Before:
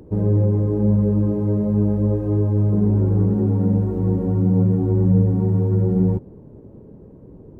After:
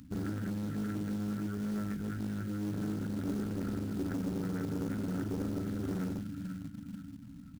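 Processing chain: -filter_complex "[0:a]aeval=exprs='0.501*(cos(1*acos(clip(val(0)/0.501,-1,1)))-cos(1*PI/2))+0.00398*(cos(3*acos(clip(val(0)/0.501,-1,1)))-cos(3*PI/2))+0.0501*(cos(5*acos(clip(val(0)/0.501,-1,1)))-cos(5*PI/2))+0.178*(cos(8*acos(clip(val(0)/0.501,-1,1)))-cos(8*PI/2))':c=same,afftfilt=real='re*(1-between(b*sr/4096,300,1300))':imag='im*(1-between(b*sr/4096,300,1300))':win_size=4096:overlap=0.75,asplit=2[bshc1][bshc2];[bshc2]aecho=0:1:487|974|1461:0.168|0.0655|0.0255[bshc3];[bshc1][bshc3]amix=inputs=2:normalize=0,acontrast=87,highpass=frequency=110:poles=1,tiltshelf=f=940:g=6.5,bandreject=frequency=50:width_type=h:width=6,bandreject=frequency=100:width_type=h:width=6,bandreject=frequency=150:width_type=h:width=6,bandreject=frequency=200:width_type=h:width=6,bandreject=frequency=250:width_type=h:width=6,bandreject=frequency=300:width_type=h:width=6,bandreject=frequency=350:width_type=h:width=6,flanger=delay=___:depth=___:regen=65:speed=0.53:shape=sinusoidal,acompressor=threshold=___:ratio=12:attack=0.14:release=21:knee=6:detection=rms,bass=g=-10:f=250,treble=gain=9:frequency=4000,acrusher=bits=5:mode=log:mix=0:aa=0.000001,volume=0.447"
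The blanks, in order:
1.5, 5.2, 0.141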